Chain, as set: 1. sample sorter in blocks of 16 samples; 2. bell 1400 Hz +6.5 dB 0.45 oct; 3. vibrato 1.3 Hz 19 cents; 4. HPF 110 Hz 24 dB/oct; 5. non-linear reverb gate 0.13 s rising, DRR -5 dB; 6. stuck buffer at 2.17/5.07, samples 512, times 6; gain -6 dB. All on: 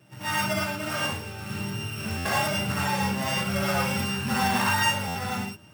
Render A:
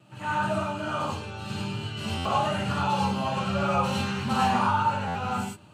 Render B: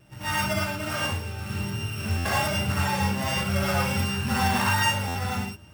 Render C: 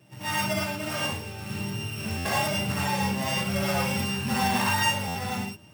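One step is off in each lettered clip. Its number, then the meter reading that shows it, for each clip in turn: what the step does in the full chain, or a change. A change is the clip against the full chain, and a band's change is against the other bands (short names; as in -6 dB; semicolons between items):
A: 1, distortion -4 dB; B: 4, 125 Hz band +4.0 dB; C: 2, 2 kHz band -1.5 dB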